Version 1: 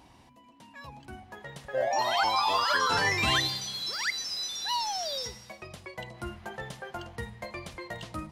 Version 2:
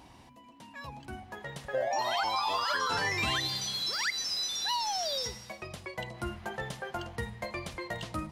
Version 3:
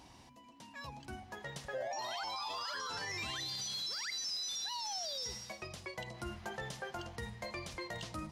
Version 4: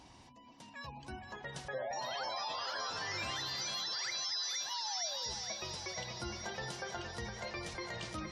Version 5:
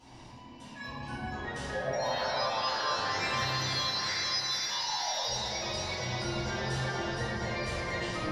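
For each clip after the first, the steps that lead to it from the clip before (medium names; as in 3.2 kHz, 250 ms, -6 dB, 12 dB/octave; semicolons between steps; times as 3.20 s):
compression 4:1, threshold -30 dBFS, peak gain reduction 7.5 dB; trim +2 dB
peaking EQ 5.7 kHz +6.5 dB 1.1 oct; peak limiter -28 dBFS, peak gain reduction 11 dB; trim -4 dB
chunks repeated in reverse 162 ms, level -11.5 dB; thinning echo 464 ms, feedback 72%, high-pass 210 Hz, level -7 dB; spectral gate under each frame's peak -30 dB strong
in parallel at -11.5 dB: one-sided clip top -36.5 dBFS; on the sum: reverberation RT60 2.7 s, pre-delay 4 ms, DRR -14.5 dB; trim -8 dB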